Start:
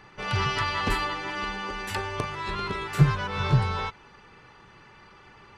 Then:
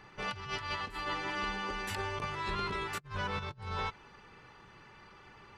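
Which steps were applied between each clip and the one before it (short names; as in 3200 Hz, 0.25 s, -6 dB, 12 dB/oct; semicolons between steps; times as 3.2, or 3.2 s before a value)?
negative-ratio compressor -30 dBFS, ratio -0.5; gain -7 dB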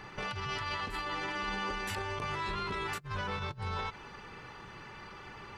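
limiter -35 dBFS, peak gain reduction 11 dB; gain +7.5 dB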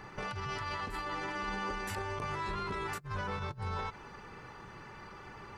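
bell 3200 Hz -6.5 dB 1.2 oct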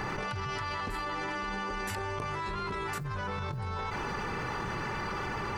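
fast leveller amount 100%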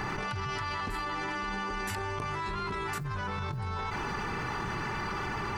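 bell 530 Hz -7 dB 0.34 oct; gain +1 dB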